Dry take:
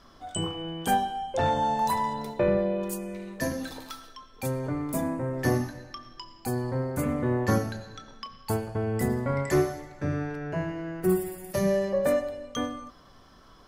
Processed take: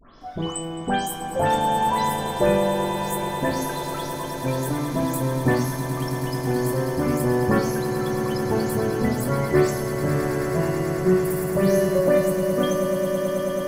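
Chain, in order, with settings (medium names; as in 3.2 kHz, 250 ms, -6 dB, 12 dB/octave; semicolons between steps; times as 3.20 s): delay that grows with frequency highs late, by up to 208 ms; echo with a slow build-up 108 ms, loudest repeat 8, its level -12 dB; trim +4.5 dB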